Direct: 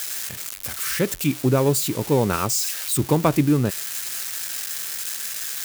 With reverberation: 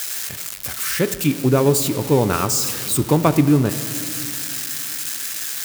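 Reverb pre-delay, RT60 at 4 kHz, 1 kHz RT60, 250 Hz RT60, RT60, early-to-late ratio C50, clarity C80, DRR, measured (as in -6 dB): 3 ms, 1.6 s, 2.6 s, 3.6 s, 2.6 s, 13.0 dB, 13.5 dB, 11.0 dB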